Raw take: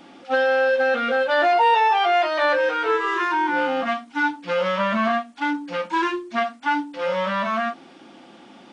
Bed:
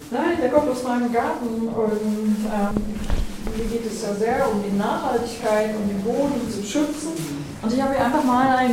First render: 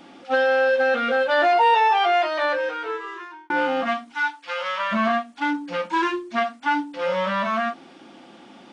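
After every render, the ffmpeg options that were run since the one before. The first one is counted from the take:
ffmpeg -i in.wav -filter_complex "[0:a]asplit=3[link_01][link_02][link_03];[link_01]afade=type=out:start_time=4.13:duration=0.02[link_04];[link_02]highpass=920,afade=type=in:start_time=4.13:duration=0.02,afade=type=out:start_time=4.91:duration=0.02[link_05];[link_03]afade=type=in:start_time=4.91:duration=0.02[link_06];[link_04][link_05][link_06]amix=inputs=3:normalize=0,asplit=2[link_07][link_08];[link_07]atrim=end=3.5,asetpts=PTS-STARTPTS,afade=type=out:start_time=2.04:duration=1.46[link_09];[link_08]atrim=start=3.5,asetpts=PTS-STARTPTS,afade=type=in:duration=0.004:curve=hsin[link_10];[link_09][link_10]concat=n=2:v=0:a=1" out.wav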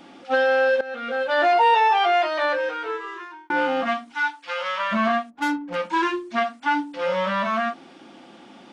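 ffmpeg -i in.wav -filter_complex "[0:a]asplit=3[link_01][link_02][link_03];[link_01]afade=type=out:start_time=5.29:duration=0.02[link_04];[link_02]adynamicsmooth=sensitivity=4:basefreq=600,afade=type=in:start_time=5.29:duration=0.02,afade=type=out:start_time=5.74:duration=0.02[link_05];[link_03]afade=type=in:start_time=5.74:duration=0.02[link_06];[link_04][link_05][link_06]amix=inputs=3:normalize=0,asplit=2[link_07][link_08];[link_07]atrim=end=0.81,asetpts=PTS-STARTPTS,afade=type=out:start_time=0.806:duration=0.004:curve=hsin:silence=0.125893[link_09];[link_08]atrim=start=0.81,asetpts=PTS-STARTPTS,afade=type=in:duration=0.67:silence=0.125893[link_10];[link_09][link_10]concat=n=2:v=0:a=1" out.wav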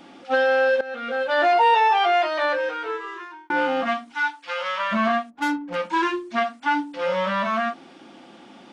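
ffmpeg -i in.wav -af anull out.wav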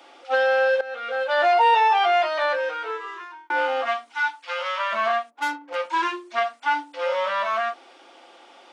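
ffmpeg -i in.wav -af "highpass=frequency=430:width=0.5412,highpass=frequency=430:width=1.3066,bandreject=frequency=1700:width=22" out.wav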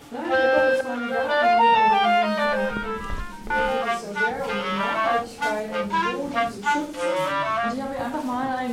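ffmpeg -i in.wav -i bed.wav -filter_complex "[1:a]volume=-8.5dB[link_01];[0:a][link_01]amix=inputs=2:normalize=0" out.wav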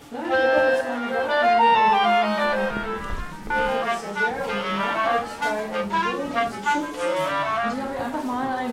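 ffmpeg -i in.wav -filter_complex "[0:a]asplit=6[link_01][link_02][link_03][link_04][link_05][link_06];[link_02]adelay=164,afreqshift=140,volume=-15dB[link_07];[link_03]adelay=328,afreqshift=280,volume=-20.8dB[link_08];[link_04]adelay=492,afreqshift=420,volume=-26.7dB[link_09];[link_05]adelay=656,afreqshift=560,volume=-32.5dB[link_10];[link_06]adelay=820,afreqshift=700,volume=-38.4dB[link_11];[link_01][link_07][link_08][link_09][link_10][link_11]amix=inputs=6:normalize=0" out.wav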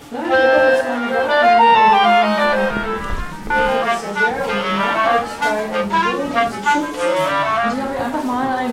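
ffmpeg -i in.wav -af "volume=6.5dB,alimiter=limit=-3dB:level=0:latency=1" out.wav

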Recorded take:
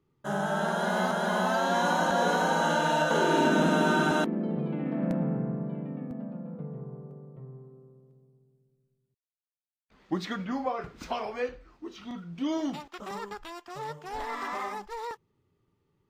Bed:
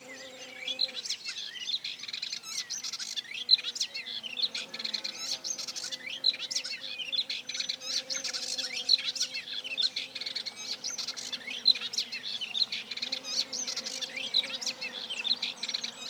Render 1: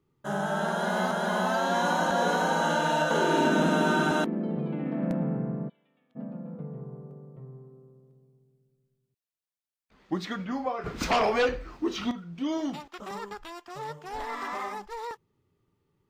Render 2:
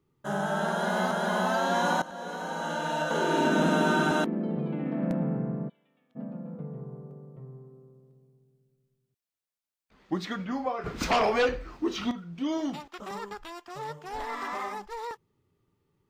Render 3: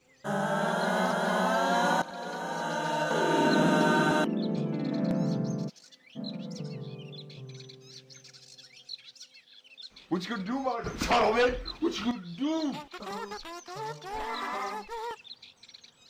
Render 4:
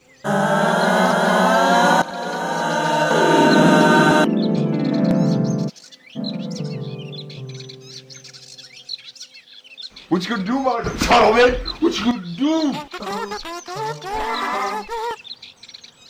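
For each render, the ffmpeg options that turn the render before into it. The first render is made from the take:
ffmpeg -i in.wav -filter_complex "[0:a]asplit=3[link_01][link_02][link_03];[link_01]afade=type=out:start_time=5.68:duration=0.02[link_04];[link_02]bandpass=frequency=3400:width_type=q:width=4.1,afade=type=in:start_time=5.68:duration=0.02,afade=type=out:start_time=6.15:duration=0.02[link_05];[link_03]afade=type=in:start_time=6.15:duration=0.02[link_06];[link_04][link_05][link_06]amix=inputs=3:normalize=0,asplit=3[link_07][link_08][link_09];[link_07]afade=type=out:start_time=10.85:duration=0.02[link_10];[link_08]aeval=exprs='0.112*sin(PI/2*2.82*val(0)/0.112)':channel_layout=same,afade=type=in:start_time=10.85:duration=0.02,afade=type=out:start_time=12.1:duration=0.02[link_11];[link_09]afade=type=in:start_time=12.1:duration=0.02[link_12];[link_10][link_11][link_12]amix=inputs=3:normalize=0" out.wav
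ffmpeg -i in.wav -filter_complex "[0:a]asplit=2[link_01][link_02];[link_01]atrim=end=2.02,asetpts=PTS-STARTPTS,afade=type=out:start_time=2.016:duration=0.004:curve=hsin:silence=0.125893[link_03];[link_02]atrim=start=2.02,asetpts=PTS-STARTPTS,afade=type=in:duration=1.66:silence=0.125893[link_04];[link_03][link_04]concat=n=2:v=0:a=1" out.wav
ffmpeg -i in.wav -i bed.wav -filter_complex "[1:a]volume=-17.5dB[link_01];[0:a][link_01]amix=inputs=2:normalize=0" out.wav
ffmpeg -i in.wav -af "volume=11.5dB,alimiter=limit=-3dB:level=0:latency=1" out.wav

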